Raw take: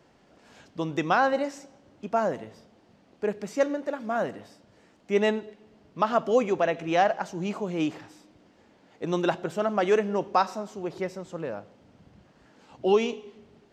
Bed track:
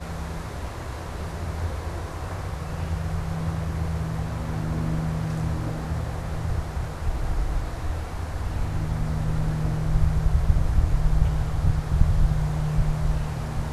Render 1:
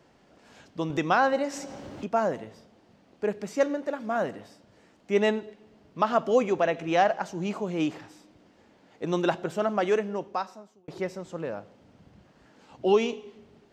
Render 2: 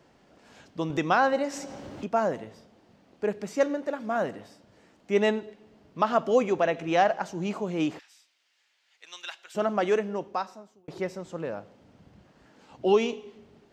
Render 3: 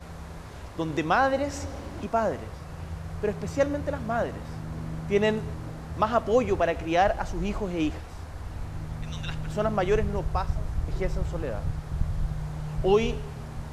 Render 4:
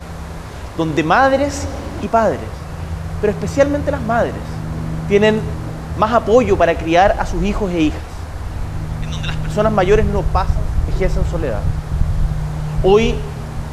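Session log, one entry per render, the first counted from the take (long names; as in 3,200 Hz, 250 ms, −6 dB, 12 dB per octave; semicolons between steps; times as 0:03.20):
0:00.90–0:02.08: upward compression, threshold −26 dBFS; 0:09.65–0:10.88: fade out
0:07.99–0:09.55: Chebyshev high-pass filter 2,600 Hz
mix in bed track −8.5 dB
level +11.5 dB; brickwall limiter −1 dBFS, peak gain reduction 2.5 dB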